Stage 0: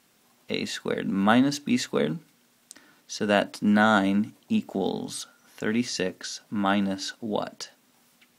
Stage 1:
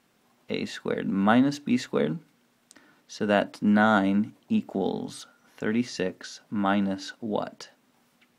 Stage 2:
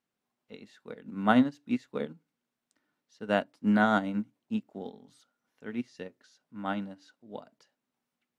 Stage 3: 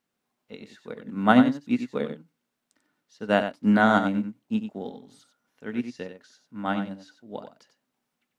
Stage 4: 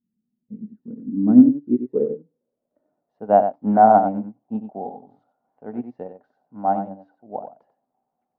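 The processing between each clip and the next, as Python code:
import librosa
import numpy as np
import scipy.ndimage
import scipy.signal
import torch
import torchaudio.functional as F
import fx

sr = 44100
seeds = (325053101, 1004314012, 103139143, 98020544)

y1 = fx.high_shelf(x, sr, hz=3400.0, db=-9.5)
y2 = fx.upward_expand(y1, sr, threshold_db=-31.0, expansion=2.5)
y3 = y2 + 10.0 ** (-9.0 / 20.0) * np.pad(y2, (int(93 * sr / 1000.0), 0))[:len(y2)]
y3 = F.gain(torch.from_numpy(y3), 5.0).numpy()
y4 = fx.filter_sweep_lowpass(y3, sr, from_hz=210.0, to_hz=750.0, start_s=0.59, end_s=3.27, q=6.2)
y4 = F.gain(torch.from_numpy(y4), -1.5).numpy()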